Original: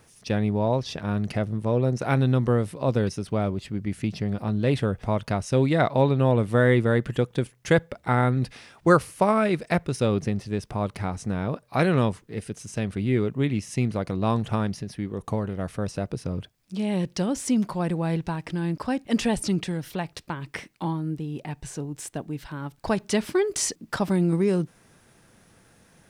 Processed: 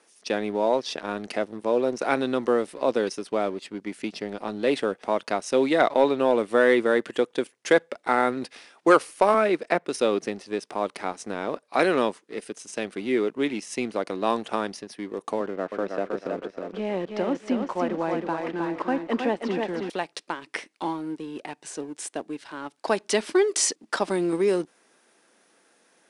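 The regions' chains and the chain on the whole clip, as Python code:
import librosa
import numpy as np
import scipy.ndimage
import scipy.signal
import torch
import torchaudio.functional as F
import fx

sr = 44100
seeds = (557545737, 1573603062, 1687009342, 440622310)

y = fx.chain(x, sr, fx.high_shelf(hz=3500.0, db=-9.0),
    fx.band_squash(depth_pct=40), at=(9.34, 9.87))
y = fx.chain(y, sr, fx.lowpass(hz=2000.0, slope=12),
    fx.echo_thinned(ms=317, feedback_pct=41, hz=170.0, wet_db=-4),
    fx.band_squash(depth_pct=40), at=(15.4, 19.9))
y = scipy.signal.sosfilt(scipy.signal.butter(4, 280.0, 'highpass', fs=sr, output='sos'), y)
y = fx.leveller(y, sr, passes=1)
y = scipy.signal.sosfilt(scipy.signal.ellip(4, 1.0, 60, 10000.0, 'lowpass', fs=sr, output='sos'), y)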